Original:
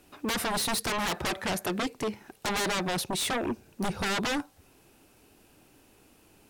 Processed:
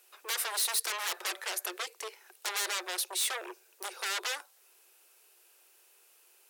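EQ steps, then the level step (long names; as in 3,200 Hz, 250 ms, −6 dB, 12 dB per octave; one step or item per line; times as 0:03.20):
Chebyshev high-pass with heavy ripple 350 Hz, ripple 3 dB
spectral tilt +3.5 dB per octave
−6.0 dB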